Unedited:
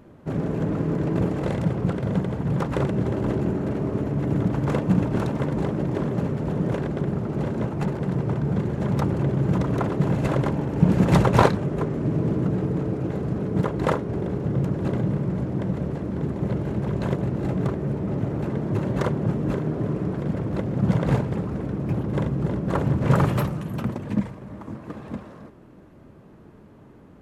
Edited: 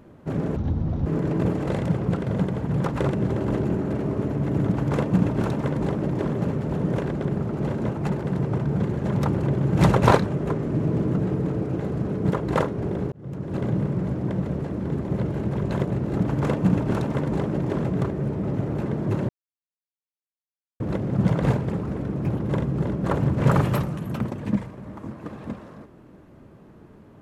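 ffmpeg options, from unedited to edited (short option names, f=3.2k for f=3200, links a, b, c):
-filter_complex "[0:a]asplit=9[a][b][c][d][e][f][g][h][i];[a]atrim=end=0.564[j];[b]atrim=start=0.56:end=0.82,asetpts=PTS-STARTPTS,asetrate=22932,aresample=44100[k];[c]atrim=start=0.816:end=9.552[l];[d]atrim=start=11.098:end=14.43,asetpts=PTS-STARTPTS,afade=t=out:st=3.328:d=0.004:c=hsin[m];[e]atrim=start=14.43:end=17.482,asetpts=PTS-STARTPTS,afade=t=in:d=0.6[n];[f]atrim=start=4.418:end=6.092[o];[g]atrim=start=17.478:end=18.93,asetpts=PTS-STARTPTS,afade=t=out:st=1.448:d=0.004:c=hsin[p];[h]atrim=start=18.93:end=20.44,asetpts=PTS-STARTPTS,volume=0[q];[i]atrim=start=20.44,asetpts=PTS-STARTPTS,afade=t=in:d=0.004:c=hsin[r];[j][k]acrossfade=d=0.004:c1=hsin:c2=hsin[s];[s][l]acrossfade=d=0.004:c1=hsin:c2=hsin[t];[m][n]concat=n=2:v=0:a=1[u];[t][u]acrossfade=d=0.004:c1=hsin:c2=hsin[v];[v][o]acrossfade=d=0.004:c1=hsin:c2=hsin[w];[p][q][r]concat=n=3:v=0:a=1[x];[w][x]acrossfade=d=0.004:c1=hsin:c2=hsin"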